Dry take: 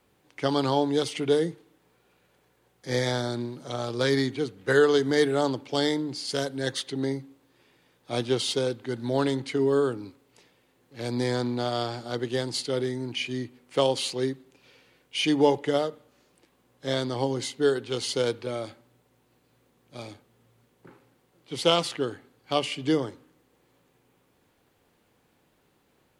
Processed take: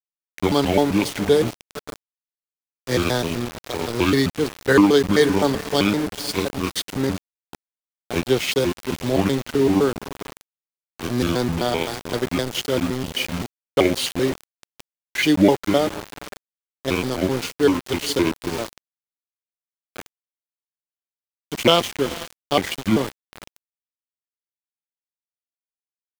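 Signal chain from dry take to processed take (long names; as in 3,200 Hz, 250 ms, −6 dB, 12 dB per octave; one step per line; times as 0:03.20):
pitch shifter gated in a rhythm −6.5 semitones, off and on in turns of 129 ms
feedback delay with all-pass diffusion 487 ms, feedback 40%, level −13.5 dB
centre clipping without the shift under −31.5 dBFS
level +6.5 dB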